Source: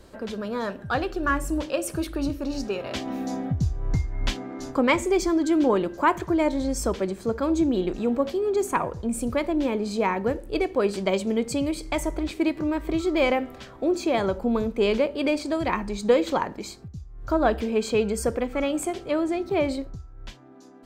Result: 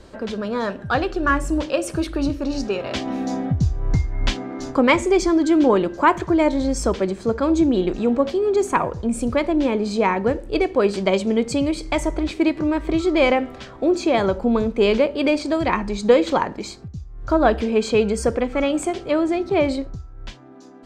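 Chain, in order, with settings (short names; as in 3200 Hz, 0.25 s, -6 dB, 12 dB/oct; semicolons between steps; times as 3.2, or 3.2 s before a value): LPF 7600 Hz 12 dB/oct; gain +5 dB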